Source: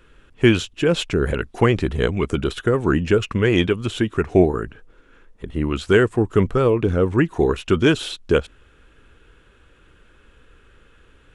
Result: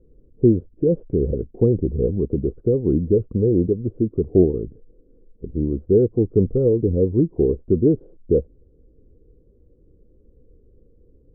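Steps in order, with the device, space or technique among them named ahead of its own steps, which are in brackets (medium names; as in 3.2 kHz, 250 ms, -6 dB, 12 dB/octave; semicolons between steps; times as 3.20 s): under water (low-pass 420 Hz 24 dB/octave; peaking EQ 500 Hz +7.5 dB 0.39 oct)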